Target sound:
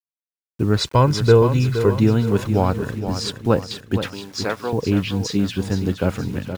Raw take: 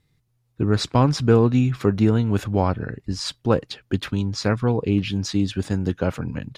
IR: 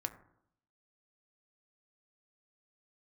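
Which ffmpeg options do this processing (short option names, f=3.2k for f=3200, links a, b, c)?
-filter_complex "[0:a]asettb=1/sr,asplit=3[a][b][c];[a]atrim=end=0.784[d];[b]atrim=start=0.78:end=2,asetpts=PTS-STARTPTS,afade=t=in:d=0.004:c=qsin,afade=t=out:st=1.216:d=0.004:c=qsin,aecho=1:1:2:0.56,atrim=end_sample=53802[e];[c]atrim=start=1.996[f];[d][e]acrossfade=d=0.004:c1=hsin:c2=qsin[g];[g][f]acrossfade=d=0.004:c1=qsin:c2=hsin,asettb=1/sr,asplit=3[h][i][j];[h]atrim=end=3.984[k];[i]atrim=start=3.98:end=4.73,asetpts=PTS-STARTPTS,afade=t=in:d=0.004:c=qsin,afade=t=out:st=0.746:d=0.004:c=qsin,highpass=460[l];[j]atrim=start=4.726[m];[k][l]acrossfade=d=0.004:c1=hsin:c2=qsin[n];[n][m]acrossfade=d=0.004:c1=qsin:c2=hsin,acrusher=bits=7:mix=0:aa=0.000001,aecho=1:1:470|940|1410|1880|2350:0.335|0.157|0.074|0.0348|0.0163,volume=1.5dB"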